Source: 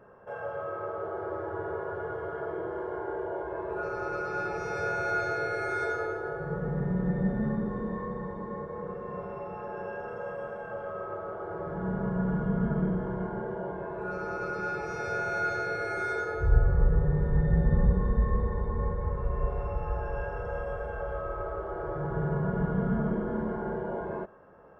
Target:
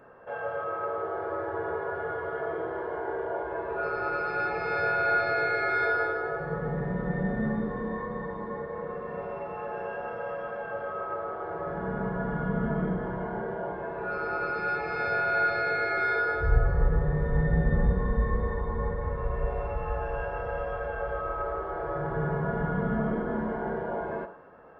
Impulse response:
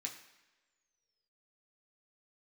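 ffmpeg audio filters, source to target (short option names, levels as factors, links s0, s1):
-filter_complex "[0:a]aresample=11025,aresample=44100,asplit=2[s0][s1];[1:a]atrim=start_sample=2205,asetrate=41895,aresample=44100,lowshelf=f=170:g=-10[s2];[s1][s2]afir=irnorm=-1:irlink=0,volume=1.33[s3];[s0][s3]amix=inputs=2:normalize=0"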